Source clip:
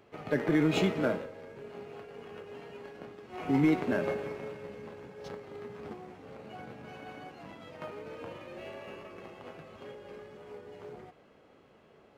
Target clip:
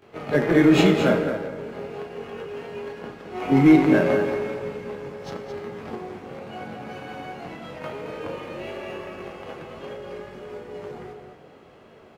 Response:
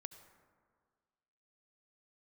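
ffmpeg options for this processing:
-filter_complex "[0:a]aecho=1:1:34.99|218.7:0.282|0.398,asplit=2[a][b];[1:a]atrim=start_sample=2205,adelay=22[c];[b][c]afir=irnorm=-1:irlink=0,volume=13.5dB[d];[a][d]amix=inputs=2:normalize=0"

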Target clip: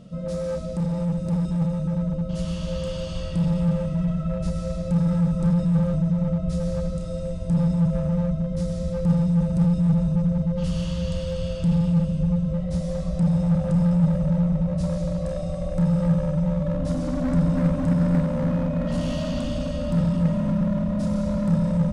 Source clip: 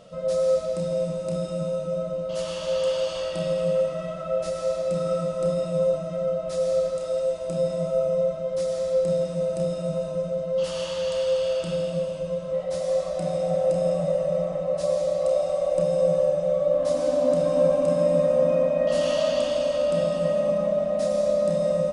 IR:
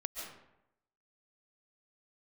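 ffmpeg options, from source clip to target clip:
-filter_complex "[0:a]lowshelf=f=360:t=q:w=1.5:g=13.5,asplit=2[a][b];[b]aeval=exprs='0.112*(abs(mod(val(0)/0.112+3,4)-2)-1)':c=same,volume=-4dB[c];[a][c]amix=inputs=2:normalize=0,asubboost=boost=5.5:cutoff=130,volume=-8.5dB"

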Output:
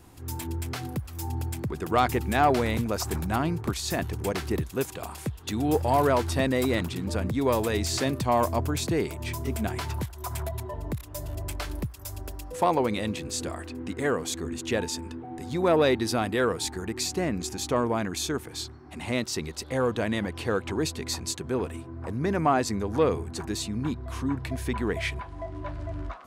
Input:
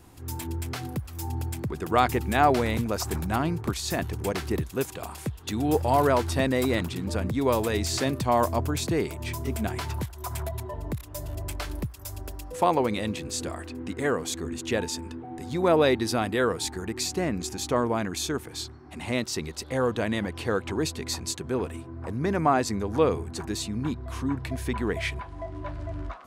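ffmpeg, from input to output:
-af "asoftclip=type=tanh:threshold=-10.5dB"

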